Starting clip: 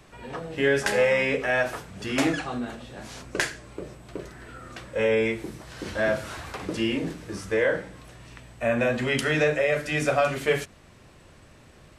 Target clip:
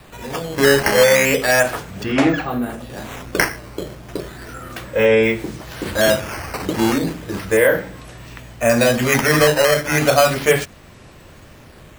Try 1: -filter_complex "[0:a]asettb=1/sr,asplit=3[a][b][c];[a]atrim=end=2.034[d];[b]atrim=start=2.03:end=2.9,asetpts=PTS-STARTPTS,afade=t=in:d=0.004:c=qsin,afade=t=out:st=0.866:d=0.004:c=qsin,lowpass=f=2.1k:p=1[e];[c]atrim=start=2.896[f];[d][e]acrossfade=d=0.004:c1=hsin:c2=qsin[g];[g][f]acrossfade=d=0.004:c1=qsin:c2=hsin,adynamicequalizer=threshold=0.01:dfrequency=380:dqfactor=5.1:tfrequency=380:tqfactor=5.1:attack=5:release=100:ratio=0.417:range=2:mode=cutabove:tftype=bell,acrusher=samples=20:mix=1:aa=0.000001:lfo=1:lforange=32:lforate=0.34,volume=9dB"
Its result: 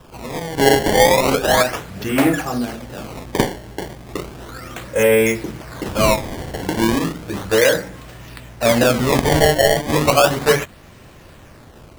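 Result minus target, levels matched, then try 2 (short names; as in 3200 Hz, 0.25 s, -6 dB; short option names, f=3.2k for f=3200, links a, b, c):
decimation with a swept rate: distortion +7 dB
-filter_complex "[0:a]asettb=1/sr,asplit=3[a][b][c];[a]atrim=end=2.034[d];[b]atrim=start=2.03:end=2.9,asetpts=PTS-STARTPTS,afade=t=in:d=0.004:c=qsin,afade=t=out:st=0.866:d=0.004:c=qsin,lowpass=f=2.1k:p=1[e];[c]atrim=start=2.896[f];[d][e]acrossfade=d=0.004:c1=hsin:c2=qsin[g];[g][f]acrossfade=d=0.004:c1=qsin:c2=hsin,adynamicequalizer=threshold=0.01:dfrequency=380:dqfactor=5.1:tfrequency=380:tqfactor=5.1:attack=5:release=100:ratio=0.417:range=2:mode=cutabove:tftype=bell,acrusher=samples=7:mix=1:aa=0.000001:lfo=1:lforange=11.2:lforate=0.34,volume=9dB"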